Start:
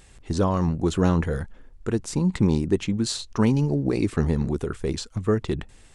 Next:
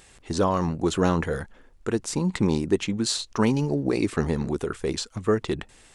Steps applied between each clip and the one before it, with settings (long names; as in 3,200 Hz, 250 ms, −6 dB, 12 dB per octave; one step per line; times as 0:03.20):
de-essing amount 45%
low-shelf EQ 200 Hz −11 dB
level +3 dB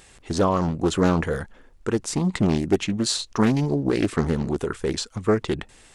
highs frequency-modulated by the lows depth 0.37 ms
level +2 dB